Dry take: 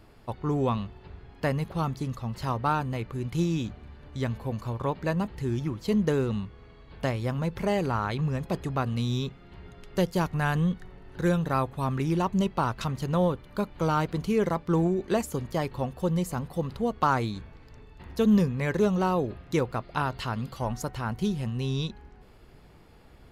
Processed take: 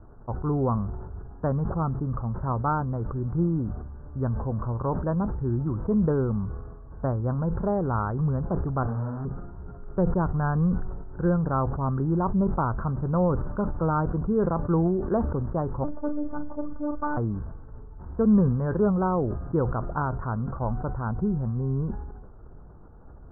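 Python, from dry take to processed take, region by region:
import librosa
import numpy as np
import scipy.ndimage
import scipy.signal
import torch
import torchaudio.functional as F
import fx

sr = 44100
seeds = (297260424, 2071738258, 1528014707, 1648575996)

y = fx.chain(x, sr, fx.notch(hz=420.0, q=13.0),
    fx.schmitt(flips_db=-35.0),
    fx.detune_double(cents=46), at=(8.83, 9.25))
y = fx.chain(y, sr, fx.overload_stage(gain_db=20.0),
    fx.robotise(hz=296.0),
    fx.doubler(ms=41.0, db=-9.0), at=(15.84, 17.17))
y = scipy.signal.sosfilt(scipy.signal.butter(12, 1500.0, 'lowpass', fs=sr, output='sos'), y)
y = fx.low_shelf(y, sr, hz=83.0, db=9.5)
y = fx.sustainer(y, sr, db_per_s=42.0)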